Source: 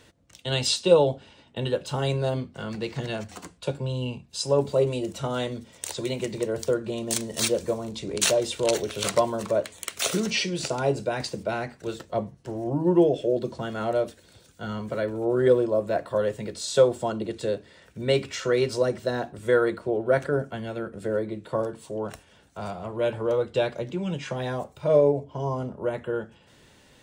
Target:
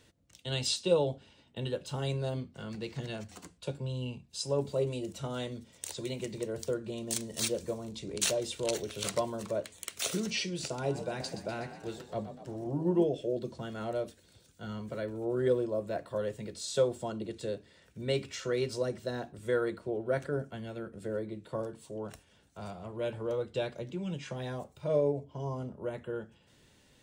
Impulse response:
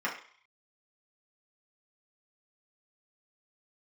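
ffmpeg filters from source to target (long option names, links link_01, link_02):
-filter_complex "[0:a]equalizer=frequency=990:width=0.47:gain=-4.5,asettb=1/sr,asplit=3[link_01][link_02][link_03];[link_01]atrim=end=10.714[link_04];[link_02]atrim=start=10.71:end=13.04,asetpts=PTS-STARTPTS,afade=type=in:duration=0.004:curve=qsin,afade=type=out:start_time=2.326:duration=0.004:curve=qsin,asplit=8[link_05][link_06][link_07][link_08][link_09][link_10][link_11][link_12];[link_06]adelay=123,afreqshift=38,volume=-11dB[link_13];[link_07]adelay=246,afreqshift=76,volume=-15.6dB[link_14];[link_08]adelay=369,afreqshift=114,volume=-20.2dB[link_15];[link_09]adelay=492,afreqshift=152,volume=-24.7dB[link_16];[link_10]adelay=615,afreqshift=190,volume=-29.3dB[link_17];[link_11]adelay=738,afreqshift=228,volume=-33.9dB[link_18];[link_12]adelay=861,afreqshift=266,volume=-38.5dB[link_19];[link_05][link_13][link_14][link_15][link_16][link_17][link_18][link_19]amix=inputs=8:normalize=0,atrim=end_sample=102753[link_20];[link_03]atrim=start=13.036[link_21];[link_04][link_20]acrossfade=duration=0.004:curve1=hsin:curve2=qsin[link_22];[link_22][link_21]acrossfade=duration=0.004:curve1=qsin:curve2=hsin,volume=-6dB"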